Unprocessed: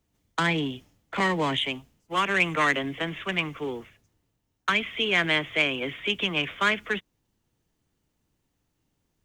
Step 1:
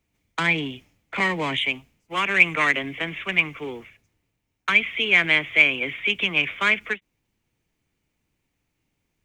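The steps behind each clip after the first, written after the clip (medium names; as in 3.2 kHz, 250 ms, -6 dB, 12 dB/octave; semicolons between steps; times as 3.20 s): peaking EQ 2.3 kHz +11 dB 0.45 oct; endings held to a fixed fall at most 560 dB/s; trim -1 dB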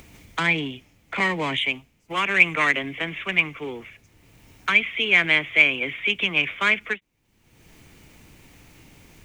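upward compressor, threshold -29 dBFS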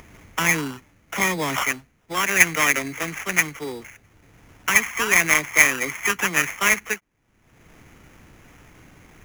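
sample-rate reducer 4.3 kHz, jitter 0%; trim +1 dB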